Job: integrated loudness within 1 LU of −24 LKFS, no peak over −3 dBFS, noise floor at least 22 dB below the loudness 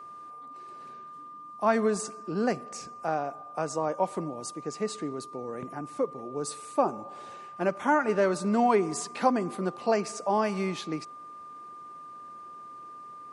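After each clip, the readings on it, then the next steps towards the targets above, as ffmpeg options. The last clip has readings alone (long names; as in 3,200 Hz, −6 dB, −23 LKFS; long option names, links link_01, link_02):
interfering tone 1,200 Hz; level of the tone −42 dBFS; integrated loudness −29.5 LKFS; sample peak −11.0 dBFS; target loudness −24.0 LKFS
→ -af "bandreject=frequency=1200:width=30"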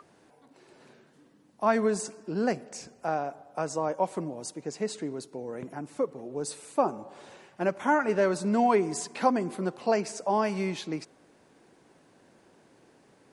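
interfering tone none found; integrated loudness −29.5 LKFS; sample peak −11.0 dBFS; target loudness −24.0 LKFS
→ -af "volume=5.5dB"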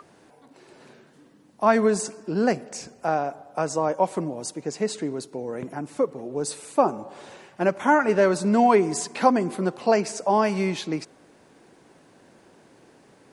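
integrated loudness −24.0 LKFS; sample peak −5.5 dBFS; background noise floor −56 dBFS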